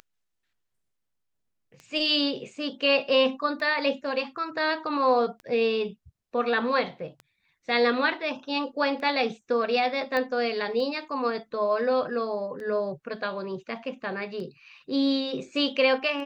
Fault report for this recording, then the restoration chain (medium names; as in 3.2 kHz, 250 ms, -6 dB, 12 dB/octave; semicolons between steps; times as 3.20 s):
tick 33 1/3 rpm -28 dBFS
10.17 s: pop -16 dBFS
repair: de-click